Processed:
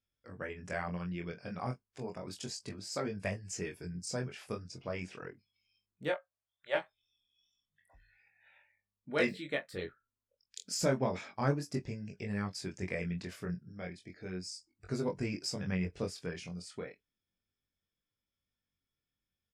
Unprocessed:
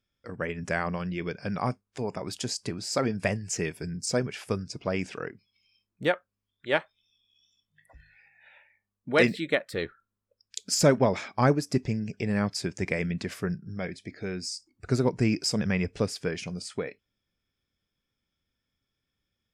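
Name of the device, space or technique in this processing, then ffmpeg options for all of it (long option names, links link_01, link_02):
double-tracked vocal: -filter_complex "[0:a]asettb=1/sr,asplit=3[link_01][link_02][link_03];[link_01]atrim=end=6.124[link_04];[link_02]atrim=start=6.12:end=6.75,asetpts=PTS-STARTPTS,afade=type=in:duration=0.004:curve=qsin,afade=type=out:start_time=0.626:duration=0.004:curve=qsin,lowshelf=frequency=440:width_type=q:width=3:gain=-11.5[link_05];[link_03]atrim=start=6.746[link_06];[link_04][link_05]acrossfade=duration=0.004:curve1=hsin:curve2=qsin[link_07];[link_07][link_06]acrossfade=duration=0.004:curve1=qsin:curve2=hsin,asplit=2[link_08][link_09];[link_09]adelay=22,volume=-12dB[link_10];[link_08][link_10]amix=inputs=2:normalize=0,flanger=delay=20:depth=3.6:speed=0.33,volume=-6.5dB"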